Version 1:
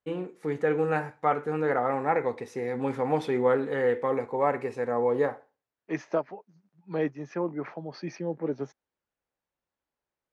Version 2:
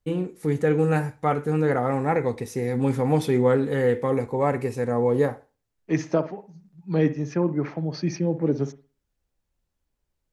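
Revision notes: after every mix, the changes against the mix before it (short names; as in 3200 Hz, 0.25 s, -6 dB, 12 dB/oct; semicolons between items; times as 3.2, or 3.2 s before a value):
second voice: send on; master: remove band-pass 1100 Hz, Q 0.55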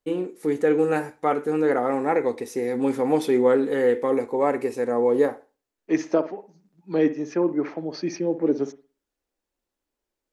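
master: add resonant low shelf 200 Hz -13 dB, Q 1.5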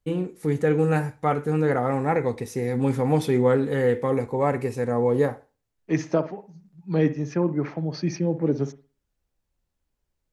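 master: add resonant low shelf 200 Hz +13 dB, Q 1.5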